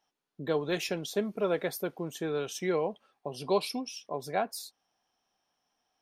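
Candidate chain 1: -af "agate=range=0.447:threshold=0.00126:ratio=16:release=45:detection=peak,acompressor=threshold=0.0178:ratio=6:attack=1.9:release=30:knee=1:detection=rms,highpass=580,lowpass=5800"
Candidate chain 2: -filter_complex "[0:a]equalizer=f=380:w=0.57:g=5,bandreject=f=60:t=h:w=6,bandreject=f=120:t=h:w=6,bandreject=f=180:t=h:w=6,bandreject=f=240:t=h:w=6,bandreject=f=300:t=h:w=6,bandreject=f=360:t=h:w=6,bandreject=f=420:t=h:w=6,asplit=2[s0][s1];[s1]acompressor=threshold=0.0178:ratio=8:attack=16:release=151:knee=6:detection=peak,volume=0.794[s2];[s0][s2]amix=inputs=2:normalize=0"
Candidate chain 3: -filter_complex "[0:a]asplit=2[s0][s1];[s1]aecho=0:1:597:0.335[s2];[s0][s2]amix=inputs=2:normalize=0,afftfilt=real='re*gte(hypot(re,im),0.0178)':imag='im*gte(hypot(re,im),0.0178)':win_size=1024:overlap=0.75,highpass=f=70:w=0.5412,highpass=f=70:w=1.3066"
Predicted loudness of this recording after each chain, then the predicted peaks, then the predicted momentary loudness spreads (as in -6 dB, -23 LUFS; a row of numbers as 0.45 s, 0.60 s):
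-44.0 LUFS, -27.5 LUFS, -33.0 LUFS; -29.5 dBFS, -10.5 dBFS, -15.5 dBFS; 7 LU, 10 LU, 13 LU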